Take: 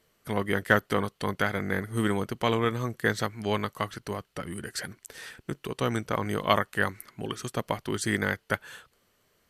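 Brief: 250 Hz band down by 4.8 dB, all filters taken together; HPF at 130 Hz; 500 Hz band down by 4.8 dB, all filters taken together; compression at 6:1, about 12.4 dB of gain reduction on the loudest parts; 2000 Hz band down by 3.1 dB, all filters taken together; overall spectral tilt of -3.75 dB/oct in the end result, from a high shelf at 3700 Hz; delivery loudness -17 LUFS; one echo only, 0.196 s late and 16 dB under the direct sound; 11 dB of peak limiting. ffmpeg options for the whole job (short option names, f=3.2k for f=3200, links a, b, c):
-af "highpass=130,equalizer=f=250:t=o:g=-4.5,equalizer=f=500:t=o:g=-4.5,equalizer=f=2k:t=o:g=-4.5,highshelf=f=3.7k:g=4,acompressor=threshold=-32dB:ratio=6,alimiter=level_in=3dB:limit=-24dB:level=0:latency=1,volume=-3dB,aecho=1:1:196:0.158,volume=25dB"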